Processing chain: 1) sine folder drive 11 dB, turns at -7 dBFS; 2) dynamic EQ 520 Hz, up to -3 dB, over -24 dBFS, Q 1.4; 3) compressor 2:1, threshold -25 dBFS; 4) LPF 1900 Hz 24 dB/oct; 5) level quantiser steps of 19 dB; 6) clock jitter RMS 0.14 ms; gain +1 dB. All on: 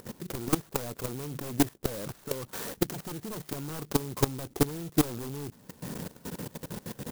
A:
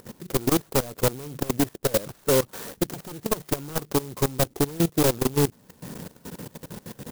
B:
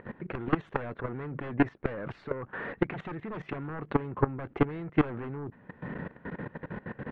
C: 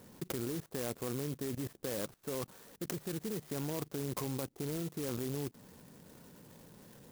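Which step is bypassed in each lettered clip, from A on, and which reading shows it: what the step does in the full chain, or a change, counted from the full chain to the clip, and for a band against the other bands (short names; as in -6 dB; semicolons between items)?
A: 2, crest factor change -6.0 dB; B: 6, 4 kHz band -14.0 dB; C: 1, distortion -1 dB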